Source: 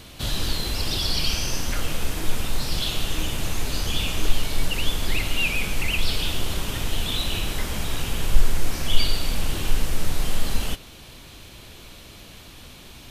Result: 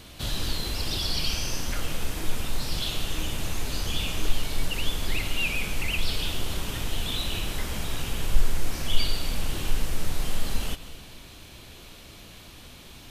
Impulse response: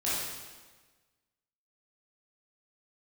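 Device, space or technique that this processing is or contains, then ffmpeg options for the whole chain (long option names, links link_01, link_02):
ducked reverb: -filter_complex "[0:a]asplit=3[link_01][link_02][link_03];[1:a]atrim=start_sample=2205[link_04];[link_02][link_04]afir=irnorm=-1:irlink=0[link_05];[link_03]apad=whole_len=577922[link_06];[link_05][link_06]sidechaincompress=threshold=-31dB:ratio=8:attack=16:release=132,volume=-15.5dB[link_07];[link_01][link_07]amix=inputs=2:normalize=0,volume=-4dB"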